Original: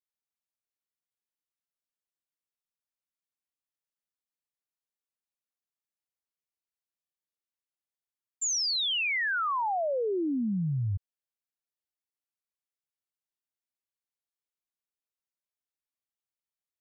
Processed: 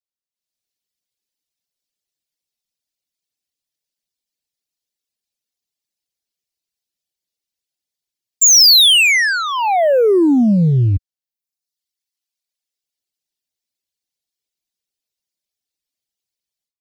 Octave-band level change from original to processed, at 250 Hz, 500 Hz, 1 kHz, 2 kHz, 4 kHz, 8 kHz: +17.0 dB, +16.5 dB, +11.5 dB, +15.0 dB, +20.0 dB, n/a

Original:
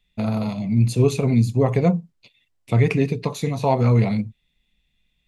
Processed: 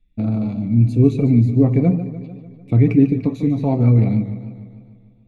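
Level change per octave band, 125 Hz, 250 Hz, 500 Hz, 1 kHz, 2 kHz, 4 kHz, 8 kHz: +4.0 dB, +6.0 dB, -2.0 dB, -7.5 dB, -7.0 dB, under -10 dB, under -15 dB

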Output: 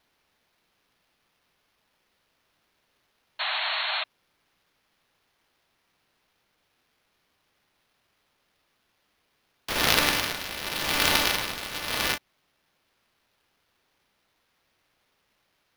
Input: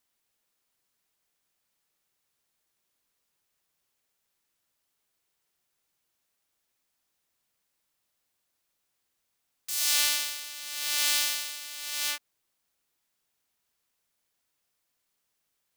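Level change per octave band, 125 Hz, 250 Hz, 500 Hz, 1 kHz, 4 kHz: n/a, +22.5 dB, +19.0 dB, +14.5 dB, +4.0 dB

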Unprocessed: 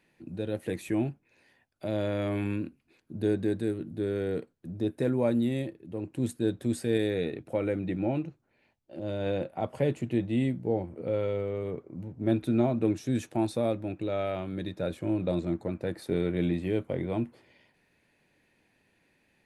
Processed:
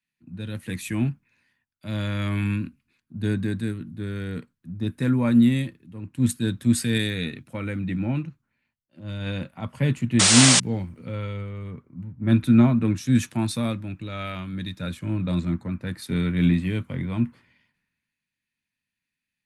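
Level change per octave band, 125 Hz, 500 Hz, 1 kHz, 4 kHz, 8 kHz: +9.0, -5.0, +4.5, +18.5, +25.5 dB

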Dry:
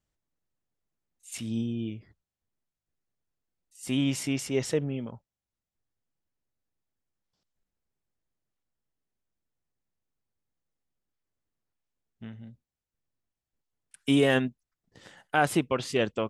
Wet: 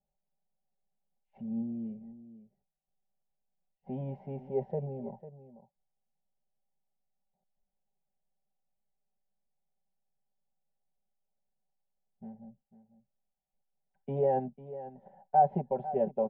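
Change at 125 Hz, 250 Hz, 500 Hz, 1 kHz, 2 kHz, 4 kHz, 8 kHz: -6.0 dB, -9.5 dB, -2.5 dB, +3.0 dB, under -25 dB, under -35 dB, under -35 dB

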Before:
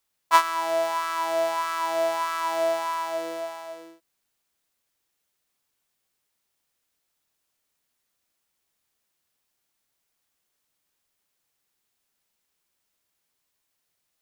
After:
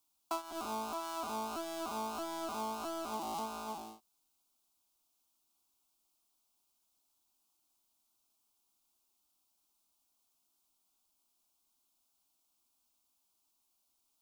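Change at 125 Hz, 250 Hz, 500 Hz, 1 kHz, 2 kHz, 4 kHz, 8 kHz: n/a, -2.0 dB, -16.0 dB, -14.0 dB, -19.5 dB, -11.5 dB, -8.5 dB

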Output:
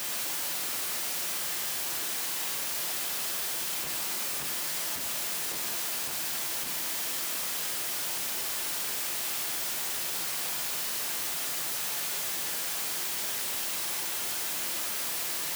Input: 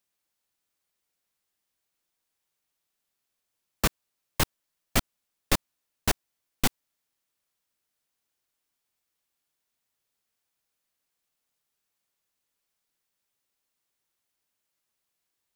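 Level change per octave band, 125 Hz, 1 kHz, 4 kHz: -12.5, +1.0, +7.0 dB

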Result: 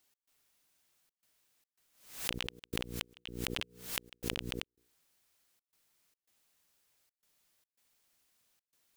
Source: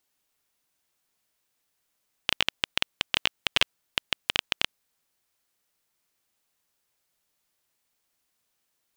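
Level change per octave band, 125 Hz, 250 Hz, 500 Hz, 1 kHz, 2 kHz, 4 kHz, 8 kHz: +3.0, +2.0, -3.0, -12.0, -13.0, -14.0, -3.5 dB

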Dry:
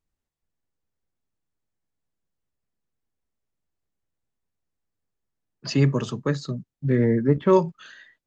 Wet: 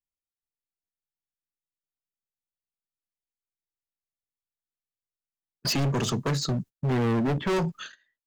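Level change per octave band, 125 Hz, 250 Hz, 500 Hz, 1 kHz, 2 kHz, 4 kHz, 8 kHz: -3.5 dB, -4.5 dB, -7.0 dB, -2.5 dB, +0.5 dB, +6.0 dB, n/a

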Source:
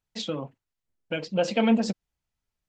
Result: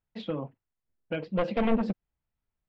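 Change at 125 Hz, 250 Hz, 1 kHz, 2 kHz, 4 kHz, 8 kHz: -1.0 dB, -4.0 dB, -2.0 dB, -5.0 dB, -11.0 dB, under -25 dB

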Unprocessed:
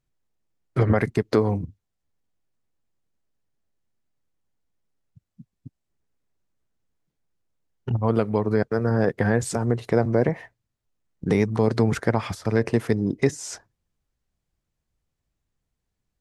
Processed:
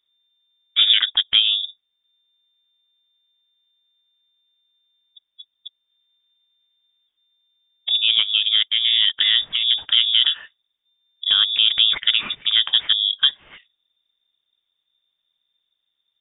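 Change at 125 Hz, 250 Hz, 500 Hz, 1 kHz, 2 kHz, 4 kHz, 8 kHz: under -30 dB, under -30 dB, under -30 dB, -10.0 dB, +5.0 dB, +32.0 dB, under -40 dB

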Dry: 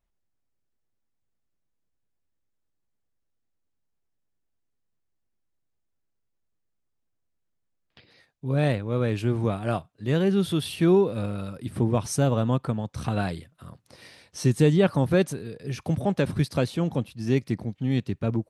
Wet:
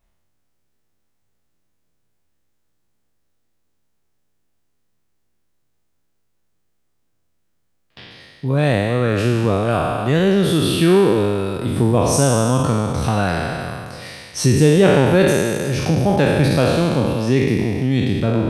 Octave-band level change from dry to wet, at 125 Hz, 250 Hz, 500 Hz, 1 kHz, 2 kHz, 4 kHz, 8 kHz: +7.5, +8.0, +9.5, +11.0, +12.0, +11.5, +13.0 dB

